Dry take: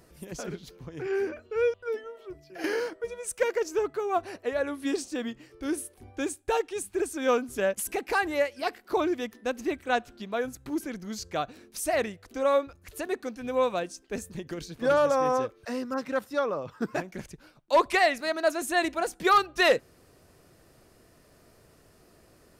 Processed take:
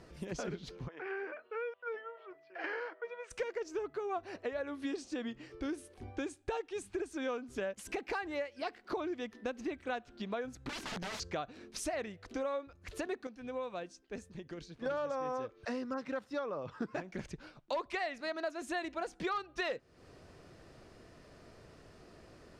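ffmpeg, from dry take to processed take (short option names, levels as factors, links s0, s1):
-filter_complex "[0:a]asplit=3[s0][s1][s2];[s0]afade=t=out:st=0.87:d=0.02[s3];[s1]highpass=770,lowpass=2000,afade=t=in:st=0.87:d=0.02,afade=t=out:st=3.3:d=0.02[s4];[s2]afade=t=in:st=3.3:d=0.02[s5];[s3][s4][s5]amix=inputs=3:normalize=0,asettb=1/sr,asplit=3[s6][s7][s8];[s6]atrim=end=10.694[s9];[s7]atrim=start=10.69:end=11.2,asetpts=PTS-STARTPTS,afade=t=in:d=0.004:c=qsin,afade=t=out:st=0.506:d=0.004:c=qsin,aeval=exprs='(mod(63.1*val(0)+1,2)-1)/63.1':c=same[s10];[s8]atrim=start=11.196[s11];[s9][s10]acrossfade=d=0.004:c1=hsin:c2=qsin[s12];[s12][s11]acrossfade=d=0.004:c1=qsin:c2=hsin,asplit=3[s13][s14][s15];[s13]atrim=end=13.27,asetpts=PTS-STARTPTS,afade=t=out:st=13.06:d=0.21:c=log:silence=0.281838[s16];[s14]atrim=start=13.27:end=14.86,asetpts=PTS-STARTPTS,volume=0.282[s17];[s15]atrim=start=14.86,asetpts=PTS-STARTPTS,afade=t=in:d=0.21:c=log:silence=0.281838[s18];[s16][s17][s18]concat=n=3:v=0:a=1,lowpass=5300,acompressor=threshold=0.0126:ratio=5,volume=1.26"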